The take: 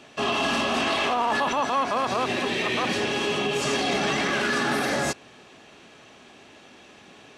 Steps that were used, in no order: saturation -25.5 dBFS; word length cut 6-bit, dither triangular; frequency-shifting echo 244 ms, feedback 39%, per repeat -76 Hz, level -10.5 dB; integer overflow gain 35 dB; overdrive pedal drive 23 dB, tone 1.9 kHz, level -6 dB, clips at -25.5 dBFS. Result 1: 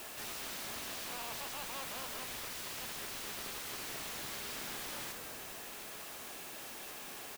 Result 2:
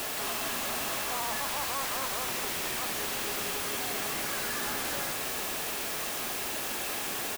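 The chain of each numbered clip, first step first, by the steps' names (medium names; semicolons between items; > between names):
overdrive pedal > frequency-shifting echo > word length cut > saturation > integer overflow; saturation > integer overflow > overdrive pedal > word length cut > frequency-shifting echo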